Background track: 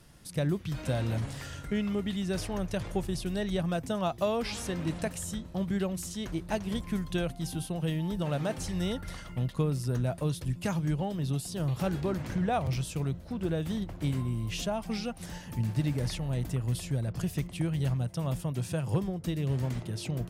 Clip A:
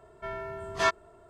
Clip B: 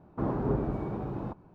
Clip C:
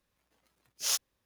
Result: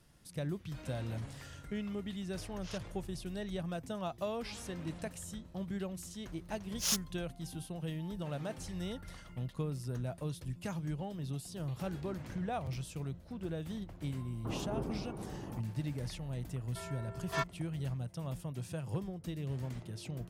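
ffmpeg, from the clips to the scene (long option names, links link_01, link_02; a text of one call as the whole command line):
ffmpeg -i bed.wav -i cue0.wav -i cue1.wav -i cue2.wav -filter_complex "[3:a]asplit=2[link_01][link_02];[0:a]volume=-8.5dB[link_03];[link_01]lowpass=3200,atrim=end=1.25,asetpts=PTS-STARTPTS,volume=-11.5dB,afade=type=in:duration=0.004:curve=hsin,afade=type=out:start_time=1.246:duration=0.004:curve=hsin,adelay=1810[link_04];[link_02]atrim=end=1.25,asetpts=PTS-STARTPTS,volume=-2.5dB,afade=type=in:duration=0.004:curve=hsin,afade=type=out:start_time=1.246:duration=0.004:curve=hsin,adelay=5990[link_05];[2:a]atrim=end=1.54,asetpts=PTS-STARTPTS,volume=-9.5dB,afade=type=in:duration=0.004:curve=hsin,afade=type=out:start_time=1.536:duration=0.004:curve=hsin,adelay=14270[link_06];[1:a]atrim=end=1.29,asetpts=PTS-STARTPTS,volume=-10dB,afade=type=in:duration=0.004:curve=hsin,afade=type=out:start_time=1.286:duration=0.004:curve=hsin,adelay=16530[link_07];[link_03][link_04][link_05][link_06][link_07]amix=inputs=5:normalize=0" out.wav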